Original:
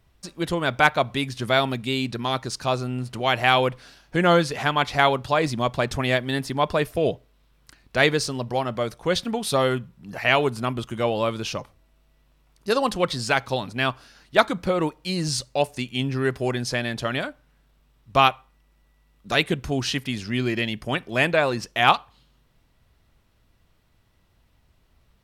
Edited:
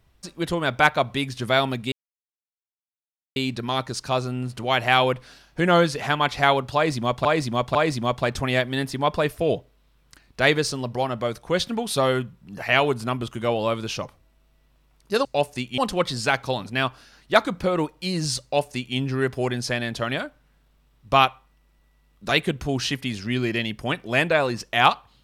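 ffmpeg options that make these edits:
ffmpeg -i in.wav -filter_complex "[0:a]asplit=6[link_01][link_02][link_03][link_04][link_05][link_06];[link_01]atrim=end=1.92,asetpts=PTS-STARTPTS,afade=type=out:start_time=1.916:duration=0.004:curve=hsin,apad=pad_dur=1.44[link_07];[link_02]atrim=start=1.92:end=5.812,asetpts=PTS-STARTPTS,afade=type=in:duration=0.004:curve=hsin[link_08];[link_03]atrim=start=5.308:end=5.812[link_09];[link_04]atrim=start=5.308:end=12.812[link_10];[link_05]atrim=start=15.458:end=15.992[link_11];[link_06]atrim=start=12.808[link_12];[link_07][link_08]concat=n=2:v=0:a=1[link_13];[link_13][link_09]acrossfade=duration=0.004:curve1=hsin:curve2=hsin[link_14];[link_14][link_10]acrossfade=duration=0.004:curve1=hsin:curve2=hsin[link_15];[link_15][link_11]acrossfade=duration=0.004:curve1=hsin:curve2=hsin[link_16];[link_16][link_12]acrossfade=duration=0.004:curve1=hsin:curve2=hsin" out.wav

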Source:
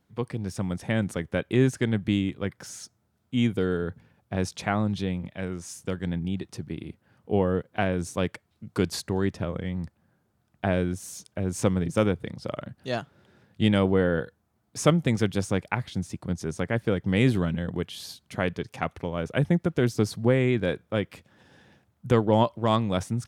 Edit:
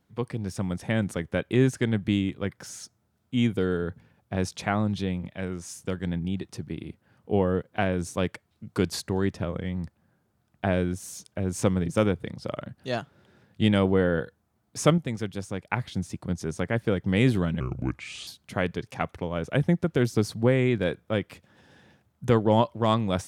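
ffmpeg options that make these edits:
ffmpeg -i in.wav -filter_complex "[0:a]asplit=5[link_01][link_02][link_03][link_04][link_05];[link_01]atrim=end=14.982[link_06];[link_02]atrim=start=14.978:end=15.702,asetpts=PTS-STARTPTS,volume=-7dB[link_07];[link_03]atrim=start=15.698:end=17.604[link_08];[link_04]atrim=start=17.6:end=18.09,asetpts=PTS-STARTPTS,asetrate=32193,aresample=44100,atrim=end_sample=29601,asetpts=PTS-STARTPTS[link_09];[link_05]atrim=start=18.086[link_10];[link_06][link_07]acrossfade=duration=0.004:curve1=hsin:curve2=hsin[link_11];[link_11][link_08]acrossfade=duration=0.004:curve1=hsin:curve2=hsin[link_12];[link_12][link_09]acrossfade=duration=0.004:curve1=hsin:curve2=hsin[link_13];[link_13][link_10]acrossfade=duration=0.004:curve1=hsin:curve2=hsin" out.wav

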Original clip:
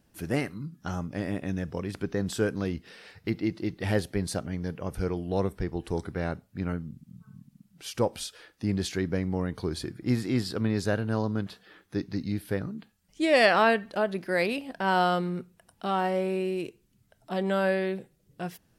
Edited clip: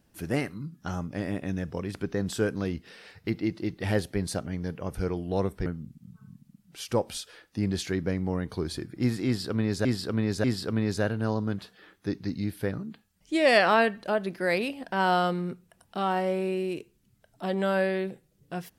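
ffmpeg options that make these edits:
ffmpeg -i in.wav -filter_complex "[0:a]asplit=4[link_01][link_02][link_03][link_04];[link_01]atrim=end=5.662[link_05];[link_02]atrim=start=6.718:end=10.912[link_06];[link_03]atrim=start=10.318:end=10.912[link_07];[link_04]atrim=start=10.318[link_08];[link_05][link_06]acrossfade=duration=0.004:curve1=hsin:curve2=hsin[link_09];[link_09][link_07]acrossfade=duration=0.004:curve1=hsin:curve2=hsin[link_10];[link_10][link_08]acrossfade=duration=0.004:curve1=hsin:curve2=hsin" out.wav

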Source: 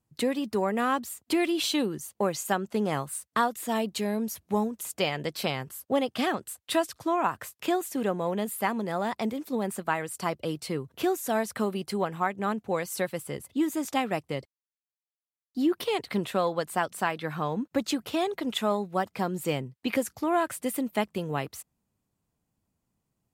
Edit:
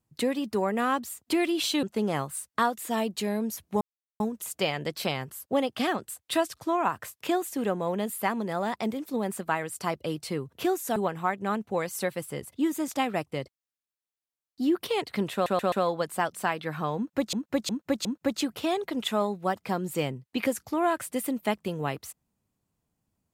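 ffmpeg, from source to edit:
ffmpeg -i in.wav -filter_complex "[0:a]asplit=10[link_01][link_02][link_03][link_04][link_05][link_06][link_07][link_08][link_09][link_10];[link_01]atrim=end=1.832[link_11];[link_02]atrim=start=2.608:end=4.59,asetpts=PTS-STARTPTS,afade=type=out:start_time=1.978:duration=0.004:curve=hsin,apad=pad_dur=0.39[link_12];[link_03]atrim=start=4.59:end=11.352,asetpts=PTS-STARTPTS,afade=type=in:duration=0.004:curve=hsin[link_13];[link_04]atrim=start=11.928:end=16.432[link_14];[link_05]atrim=start=16.298:end=16.432[link_15];[link_06]atrim=start=16.298:end=16.432[link_16];[link_07]atrim=start=16.298:end=17.912[link_17];[link_08]atrim=start=17.548:end=17.912[link_18];[link_09]atrim=start=17.548:end=17.912[link_19];[link_10]atrim=start=17.548[link_20];[link_12][link_13]concat=n=2:v=0:a=1[link_21];[link_11][link_21]acrossfade=duration=0.004:curve1=hsin:curve2=hsin[link_22];[link_22][link_14]acrossfade=duration=0.004:curve1=hsin:curve2=hsin[link_23];[link_23][link_15]acrossfade=duration=0.004:curve1=hsin:curve2=hsin[link_24];[link_24][link_16]acrossfade=duration=0.004:curve1=hsin:curve2=hsin[link_25];[link_25][link_17]acrossfade=duration=0.004:curve1=hsin:curve2=hsin[link_26];[link_26][link_18]acrossfade=duration=0.004:curve1=hsin:curve2=hsin[link_27];[link_27][link_19]acrossfade=duration=0.004:curve1=hsin:curve2=hsin[link_28];[link_28][link_20]acrossfade=duration=0.004:curve1=hsin:curve2=hsin" out.wav

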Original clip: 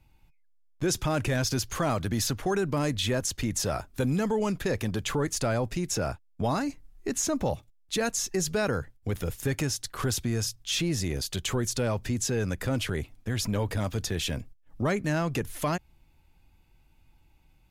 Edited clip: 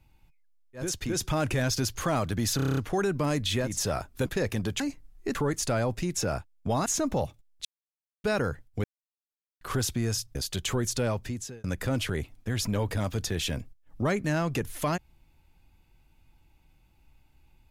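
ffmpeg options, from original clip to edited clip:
ffmpeg -i in.wav -filter_complex "[0:a]asplit=21[link_01][link_02][link_03][link_04][link_05][link_06][link_07][link_08][link_09][link_10][link_11][link_12][link_13][link_14][link_15][link_16][link_17][link_18][link_19][link_20][link_21];[link_01]atrim=end=0.97[link_22];[link_02]atrim=start=3.1:end=3.6[link_23];[link_03]atrim=start=0.73:end=2.332[link_24];[link_04]atrim=start=2.298:end=2.332[link_25];[link_05]atrim=start=2.298:end=2.332[link_26];[link_06]atrim=start=2.298:end=2.332[link_27];[link_07]atrim=start=2.298:end=2.332[link_28];[link_08]atrim=start=2.298:end=2.332[link_29];[link_09]atrim=start=2.298:end=2.332[link_30];[link_10]atrim=start=2.298:end=3.34[link_31];[link_11]atrim=start=3.36:end=4.052[link_32];[link_12]atrim=start=4.548:end=5.092[link_33];[link_13]atrim=start=6.598:end=7.152[link_34];[link_14]atrim=start=5.088:end=6.602[link_35];[link_15]atrim=start=7.148:end=7.94,asetpts=PTS-STARTPTS,afade=type=out:start_time=0.788:duration=0.004:curve=hsin[link_36];[link_16]atrim=start=7.94:end=8.53,asetpts=PTS-STARTPTS,volume=0[link_37];[link_17]atrim=start=8.53:end=9.13,asetpts=PTS-STARTPTS,afade=type=in:duration=0.004:curve=hsin,afade=type=out:start_time=0.596:duration=0.004:curve=hsin[link_38];[link_18]atrim=start=9.13:end=9.9,asetpts=PTS-STARTPTS,volume=0[link_39];[link_19]atrim=start=9.9:end=10.642,asetpts=PTS-STARTPTS,afade=type=in:duration=0.004:curve=hsin[link_40];[link_20]atrim=start=11.148:end=12.44,asetpts=PTS-STARTPTS,afade=type=out:start_time=0.732:duration=0.56[link_41];[link_21]atrim=start=12.44,asetpts=PTS-STARTPTS,afade=type=in:duration=0.004:curve=hsin[link_42];[link_22][link_23]acrossfade=duration=0.24:curve1=tri:curve2=tri[link_43];[link_43][link_24]acrossfade=duration=0.24:curve1=tri:curve2=tri[link_44];[link_44][link_25]acrossfade=duration=0.004:curve1=hsin:curve2=hsin[link_45];[link_45][link_26]acrossfade=duration=0.004:curve1=hsin:curve2=hsin[link_46];[link_46][link_27]acrossfade=duration=0.004:curve1=hsin:curve2=hsin[link_47];[link_47][link_28]acrossfade=duration=0.004:curve1=hsin:curve2=hsin[link_48];[link_48][link_29]acrossfade=duration=0.004:curve1=hsin:curve2=hsin[link_49];[link_49][link_30]acrossfade=duration=0.004:curve1=hsin:curve2=hsin[link_50];[link_50][link_31]acrossfade=duration=0.004:curve1=hsin:curve2=hsin[link_51];[link_51][link_32]acrossfade=duration=0.24:curve1=tri:curve2=tri[link_52];[link_52][link_33]acrossfade=duration=0.004:curve1=hsin:curve2=hsin[link_53];[link_53][link_34]acrossfade=duration=0.004:curve1=hsin:curve2=hsin[link_54];[link_54][link_35]acrossfade=duration=0.004:curve1=hsin:curve2=hsin[link_55];[link_36][link_37][link_38][link_39][link_40]concat=n=5:v=0:a=1[link_56];[link_55][link_56]acrossfade=duration=0.004:curve1=hsin:curve2=hsin[link_57];[link_41][link_42]concat=n=2:v=0:a=1[link_58];[link_57][link_58]acrossfade=duration=0.004:curve1=hsin:curve2=hsin" out.wav

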